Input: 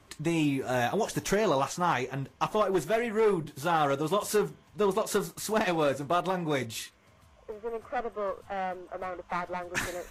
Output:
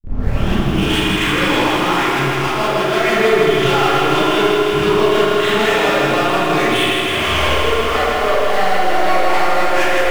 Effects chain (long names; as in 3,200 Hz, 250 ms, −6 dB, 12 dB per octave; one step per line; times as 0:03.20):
turntable start at the beginning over 1.70 s
camcorder AGC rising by 41 dB per second
Butterworth low-pass 3,400 Hz 96 dB per octave
tilt shelving filter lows −9 dB, about 1,400 Hz
transient designer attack +5 dB, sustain −2 dB
downward compressor, threshold −37 dBFS, peak gain reduction 16.5 dB
leveller curve on the samples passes 5
feedback echo with a low-pass in the loop 79 ms, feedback 67%, low-pass 2,000 Hz, level −4.5 dB
four-comb reverb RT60 0.69 s, combs from 28 ms, DRR −8.5 dB
feedback echo at a low word length 161 ms, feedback 80%, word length 7 bits, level −4 dB
level −2 dB